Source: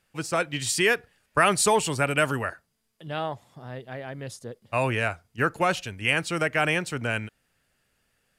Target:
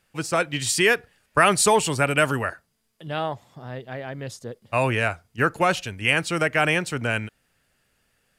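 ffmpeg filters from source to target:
ffmpeg -i in.wav -filter_complex "[0:a]asettb=1/sr,asplit=3[link_01][link_02][link_03];[link_01]atrim=end=3.334[link_04];[link_02]atrim=start=3.33:end=4.47,asetpts=PTS-STARTPTS,afade=type=in:duration=0.004:curve=qsin,afade=type=out:start_time=1.136:duration=0.004:curve=qsin,equalizer=frequency=10000:width_type=o:width=0.32:gain=-6.5[link_05];[link_03]atrim=start=4.466[link_06];[link_04][link_05]acrossfade=duration=0.004:curve1=hsin:curve2=qsin[link_07];[link_07][link_06]acrossfade=duration=0.004:curve1=qsin:curve2=hsin,volume=3dB" out.wav

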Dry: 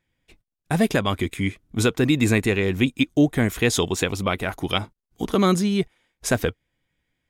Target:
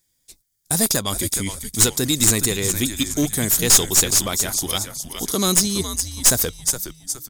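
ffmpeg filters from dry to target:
ffmpeg -i in.wav -filter_complex "[0:a]asplit=6[link_01][link_02][link_03][link_04][link_05][link_06];[link_02]adelay=416,afreqshift=-120,volume=-9.5dB[link_07];[link_03]adelay=832,afreqshift=-240,volume=-17dB[link_08];[link_04]adelay=1248,afreqshift=-360,volume=-24.6dB[link_09];[link_05]adelay=1664,afreqshift=-480,volume=-32.1dB[link_10];[link_06]adelay=2080,afreqshift=-600,volume=-39.6dB[link_11];[link_01][link_07][link_08][link_09][link_10][link_11]amix=inputs=6:normalize=0,aexciter=amount=9.4:drive=7.8:freq=4100,aeval=exprs='clip(val(0),-1,0.282)':channel_layout=same,volume=-3.5dB" out.wav

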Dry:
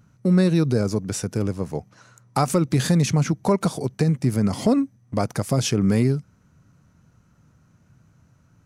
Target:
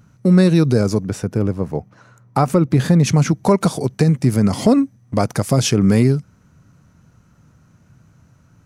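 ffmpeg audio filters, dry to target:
ffmpeg -i in.wav -filter_complex "[0:a]asplit=3[link_01][link_02][link_03];[link_01]afade=type=out:start_time=1.06:duration=0.02[link_04];[link_02]equalizer=frequency=7800:width_type=o:width=2.7:gain=-11.5,afade=type=in:start_time=1.06:duration=0.02,afade=type=out:start_time=3.05:duration=0.02[link_05];[link_03]afade=type=in:start_time=3.05:duration=0.02[link_06];[link_04][link_05][link_06]amix=inputs=3:normalize=0,volume=5.5dB" out.wav

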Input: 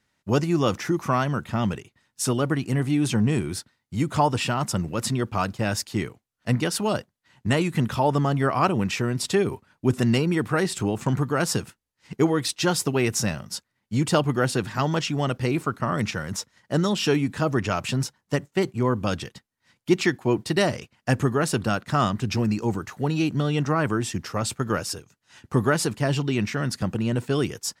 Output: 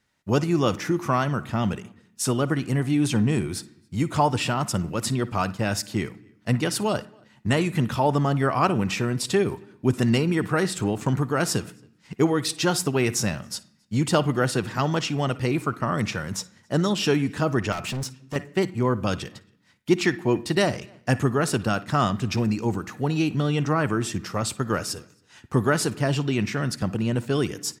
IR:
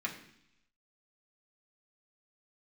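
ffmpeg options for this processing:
-filter_complex "[0:a]asplit=2[link_01][link_02];[link_02]adelay=274.1,volume=-30dB,highshelf=frequency=4000:gain=-6.17[link_03];[link_01][link_03]amix=inputs=2:normalize=0,asplit=2[link_04][link_05];[1:a]atrim=start_sample=2205,adelay=55[link_06];[link_05][link_06]afir=irnorm=-1:irlink=0,volume=-19dB[link_07];[link_04][link_07]amix=inputs=2:normalize=0,asettb=1/sr,asplit=3[link_08][link_09][link_10];[link_08]atrim=end=17.724[link_11];[link_09]atrim=start=17.72:end=18.36,asetpts=PTS-STARTPTS,afade=type=in:duration=0.004:curve=qsin,afade=type=out:start_time=0.636:duration=0.004:curve=qsin,asoftclip=type=hard:threshold=-26.5dB[link_12];[link_10]atrim=start=18.356[link_13];[link_11][link_12]acrossfade=duration=0.004:curve1=hsin:curve2=qsin[link_14];[link_14][link_13]acrossfade=duration=0.004:curve1=qsin:curve2=hsin"

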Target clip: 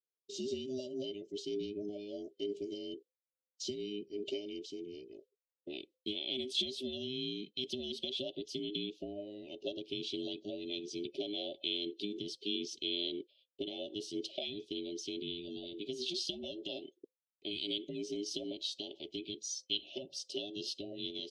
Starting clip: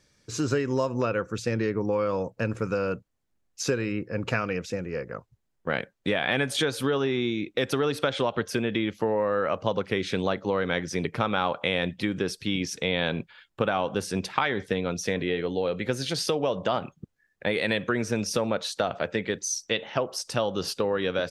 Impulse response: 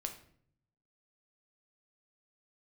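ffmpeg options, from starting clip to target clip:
-af "afftfilt=real='real(if(between(b,1,1008),(2*floor((b-1)/24)+1)*24-b,b),0)':imag='imag(if(between(b,1,1008),(2*floor((b-1)/24)+1)*24-b,b),0)*if(between(b,1,1008),-1,1)':win_size=2048:overlap=0.75,highpass=580,lowpass=3200,agate=range=-33dB:threshold=-44dB:ratio=3:detection=peak,asuperstop=centerf=1300:order=12:qfactor=0.53,volume=1dB"

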